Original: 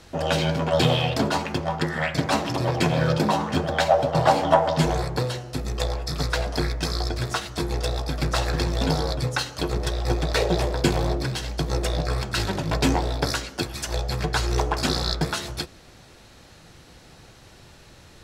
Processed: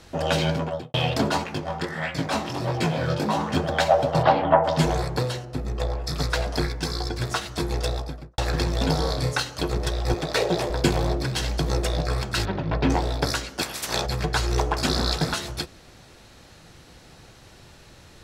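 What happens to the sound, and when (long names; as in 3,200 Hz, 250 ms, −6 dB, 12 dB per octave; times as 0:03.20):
0:00.49–0:00.94: fade out and dull
0:01.44–0:03.37: chorus effect 1.5 Hz, delay 16.5 ms, depth 6.8 ms
0:04.22–0:04.63: low-pass filter 4,700 Hz → 2,000 Hz 24 dB per octave
0:05.45–0:06.04: high-shelf EQ 2,400 Hz −11 dB
0:06.66–0:07.21: notch comb filter 630 Hz
0:07.85–0:08.38: fade out and dull
0:08.97–0:09.40: flutter between parallel walls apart 5.2 metres, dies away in 0.36 s
0:10.14–0:10.70: high-pass filter 140 Hz
0:11.36–0:11.81: envelope flattener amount 50%
0:12.45–0:12.90: high-frequency loss of the air 300 metres
0:13.60–0:14.05: ceiling on every frequency bin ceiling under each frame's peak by 23 dB
0:14.78–0:15.34: delay that swaps between a low-pass and a high-pass 144 ms, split 1,600 Hz, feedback 70%, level −4 dB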